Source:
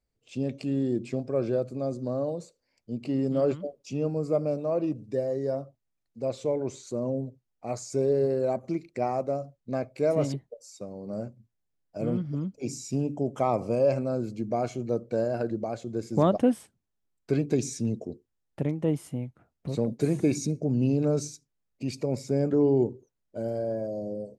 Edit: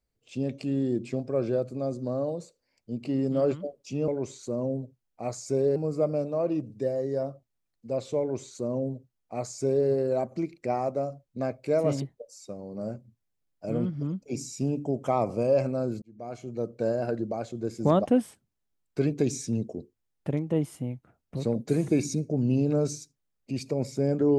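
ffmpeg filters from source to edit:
-filter_complex "[0:a]asplit=4[s0][s1][s2][s3];[s0]atrim=end=4.082[s4];[s1]atrim=start=6.518:end=8.202[s5];[s2]atrim=start=4.078:end=14.34,asetpts=PTS-STARTPTS,afade=t=out:st=10.258:d=0.004:c=hsin[s6];[s3]atrim=start=14.34,asetpts=PTS-STARTPTS,afade=t=in:d=0.84[s7];[s4][s5]acrossfade=d=0.004:c1=hsin:c2=hsin[s8];[s6][s7]concat=n=2:v=0:a=1[s9];[s8][s9]acrossfade=d=0.004:c1=hsin:c2=hsin"

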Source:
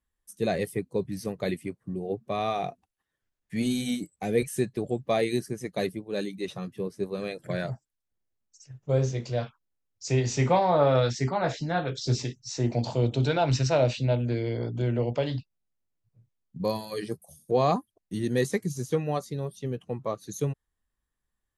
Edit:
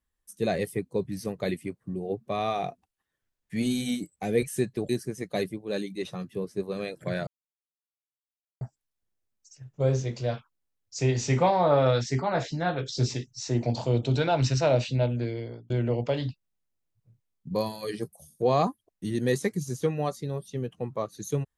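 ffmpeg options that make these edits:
-filter_complex "[0:a]asplit=4[s0][s1][s2][s3];[s0]atrim=end=4.892[s4];[s1]atrim=start=5.318:end=7.7,asetpts=PTS-STARTPTS,afade=t=out:st=2.378:d=0.004:c=hsin,apad=pad_dur=1.34[s5];[s2]atrim=start=7.7:end=14.79,asetpts=PTS-STARTPTS,afade=t=in:d=0.004:c=hsin,afade=t=out:st=6.31:d=0.78:c=qsin[s6];[s3]atrim=start=14.79,asetpts=PTS-STARTPTS,afade=t=in:d=0.004:c=hsin[s7];[s5][s6][s7]concat=n=3:v=0:a=1[s8];[s4][s8]acrossfade=d=0.004:c1=hsin:c2=hsin"

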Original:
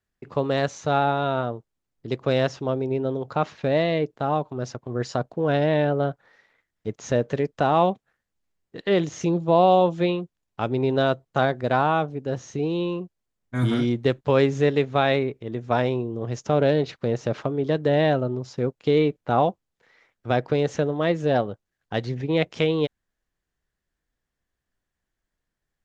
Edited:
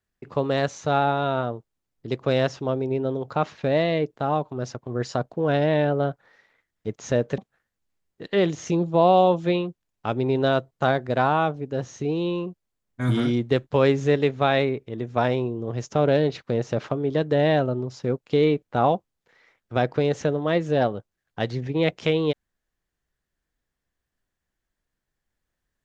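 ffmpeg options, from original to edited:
-filter_complex "[0:a]asplit=2[s0][s1];[s0]atrim=end=7.382[s2];[s1]atrim=start=7.918[s3];[s2][s3]acrossfade=d=0.004:c1=hsin:c2=hsin"

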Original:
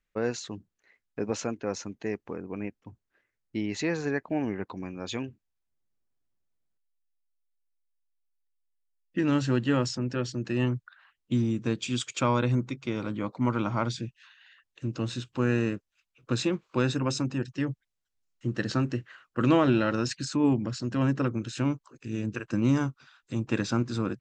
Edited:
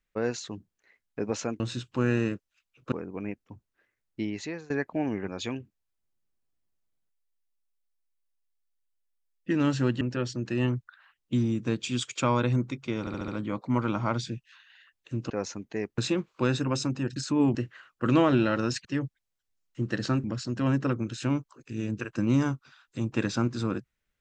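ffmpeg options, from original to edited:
-filter_complex "[0:a]asplit=16[s0][s1][s2][s3][s4][s5][s6][s7][s8][s9][s10][s11][s12][s13][s14][s15];[s0]atrim=end=1.602[s16];[s1]atrim=start=15.008:end=16.332[s17];[s2]atrim=start=2.278:end=4.06,asetpts=PTS-STARTPTS,afade=t=out:st=1.282:d=0.5:silence=0.0891251[s18];[s3]atrim=start=4.06:end=4.642,asetpts=PTS-STARTPTS,afade=t=in:d=0.004:c=hsin:silence=0.0891251[s19];[s4]atrim=start=4.958:end=9.692[s20];[s5]atrim=start=9.998:end=13.062[s21];[s6]atrim=start=12.988:end=13.062[s22];[s7]atrim=start=12.988:end=13.062[s23];[s8]atrim=start=12.988:end=13.062[s24];[s9]atrim=start=12.988:end=15.012[s25];[s10]atrim=start=1.598:end=2.282[s26];[s11]atrim=start=16.328:end=17.512[s27];[s12]atrim=start=20.198:end=20.592[s28];[s13]atrim=start=18.898:end=20.202[s29];[s14]atrim=start=17.508:end=18.902[s30];[s15]atrim=start=20.588[s31];[s16][s17]acrossfade=d=0.004:c1=hsin:c2=hsin[s32];[s18][s19]concat=n=2:v=0:a=1[s33];[s32][s33]acrossfade=d=0.004:c1=hsin:c2=hsin[s34];[s34][s20]acrossfade=d=0.004:c1=hsin:c2=hsin[s35];[s35][s21]acrossfade=d=0.004:c1=hsin:c2=hsin[s36];[s36][s22]acrossfade=d=0.004:c1=hsin:c2=hsin[s37];[s37][s23]acrossfade=d=0.004:c1=hsin:c2=hsin[s38];[s38][s24]acrossfade=d=0.004:c1=hsin:c2=hsin[s39];[s39][s25]acrossfade=d=0.004:c1=hsin:c2=hsin[s40];[s40][s26]acrossfade=d=0.004:c1=hsin:c2=hsin[s41];[s41][s27]acrossfade=d=0.004:c1=hsin:c2=hsin[s42];[s42][s28]acrossfade=d=0.004:c1=hsin:c2=hsin[s43];[s43][s29]acrossfade=d=0.004:c1=hsin:c2=hsin[s44];[s44][s30]acrossfade=d=0.004:c1=hsin:c2=hsin[s45];[s45][s31]acrossfade=d=0.004:c1=hsin:c2=hsin"

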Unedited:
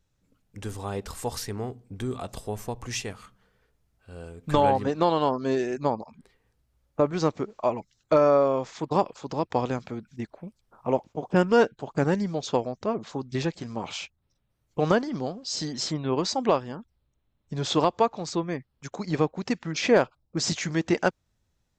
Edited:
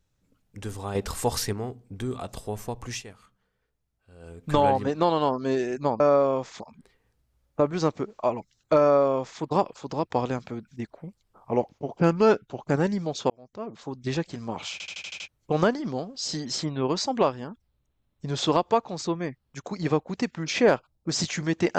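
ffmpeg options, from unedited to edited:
-filter_complex "[0:a]asplit=17[s0][s1][s2][s3][s4][s5][s6][s7][s8][s9][s10][s11][s12][s13][s14][s15][s16];[s0]atrim=end=0.952[s17];[s1]atrim=start=0.948:end=1.532,asetpts=PTS-STARTPTS,volume=1.88[s18];[s2]atrim=start=1.528:end=3.03,asetpts=PTS-STARTPTS,afade=t=out:st=1.372:d=0.13:silence=0.354813[s19];[s3]atrim=start=3.03:end=4.19,asetpts=PTS-STARTPTS,volume=0.355[s20];[s4]atrim=start=4.19:end=6.002,asetpts=PTS-STARTPTS,afade=t=in:d=0.13:silence=0.354813[s21];[s5]atrim=start=8.208:end=8.812[s22];[s6]atrim=start=5.998:end=10.374[s23];[s7]atrim=start=10.37:end=11.97,asetpts=PTS-STARTPTS,asetrate=41013,aresample=44100[s24];[s8]atrim=start=11.966:end=12.58,asetpts=PTS-STARTPTS,afade=t=out:st=0.61:d=0.004:c=hsin[s25];[s9]atrim=start=12.58:end=14.082,asetpts=PTS-STARTPTS,afade=t=in:d=0.83[s26];[s10]atrim=start=13.998:end=14.082[s27];[s11]atrim=start=13.998:end=14.082[s28];[s12]atrim=start=13.998:end=14.082[s29];[s13]atrim=start=13.998:end=14.082[s30];[s14]atrim=start=13.998:end=14.082[s31];[s15]atrim=start=13.998:end=14.082[s32];[s16]atrim=start=14.558[s33];[s17][s18]acrossfade=d=0.004:c1=hsin:c2=hsin[s34];[s19][s20][s21]concat=n=3:v=0:a=1[s35];[s34][s35]acrossfade=d=0.004:c1=hsin:c2=hsin[s36];[s36][s22]acrossfade=d=0.004:c1=hsin:c2=hsin[s37];[s37][s23]acrossfade=d=0.004:c1=hsin:c2=hsin[s38];[s38][s24]acrossfade=d=0.004:c1=hsin:c2=hsin[s39];[s25][s26]concat=n=2:v=0:a=1[s40];[s39][s40]acrossfade=d=0.004:c1=hsin:c2=hsin[s41];[s41][s27]acrossfade=d=0.004:c1=hsin:c2=hsin[s42];[s42][s28]acrossfade=d=0.004:c1=hsin:c2=hsin[s43];[s43][s29]acrossfade=d=0.004:c1=hsin:c2=hsin[s44];[s44][s30]acrossfade=d=0.004:c1=hsin:c2=hsin[s45];[s45][s31]acrossfade=d=0.004:c1=hsin:c2=hsin[s46];[s46][s32]acrossfade=d=0.004:c1=hsin:c2=hsin[s47];[s47][s33]acrossfade=d=0.004:c1=hsin:c2=hsin"

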